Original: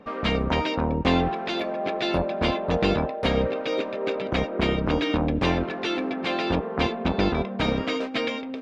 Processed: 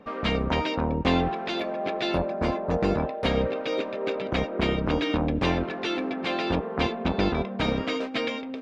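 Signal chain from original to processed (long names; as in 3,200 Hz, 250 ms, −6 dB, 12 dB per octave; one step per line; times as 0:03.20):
0:02.29–0:03.00: parametric band 3,300 Hz −12 dB 1 octave
level −1.5 dB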